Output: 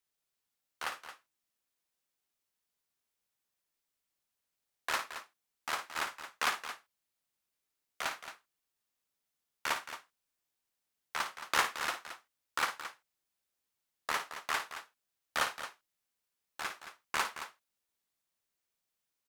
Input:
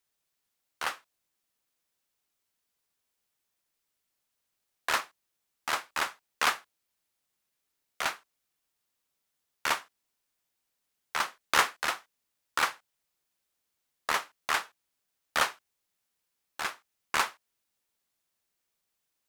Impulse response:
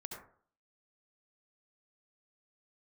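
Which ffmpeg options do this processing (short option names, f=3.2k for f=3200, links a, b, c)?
-af "aecho=1:1:55.39|221.6:0.316|0.282,volume=-5.5dB"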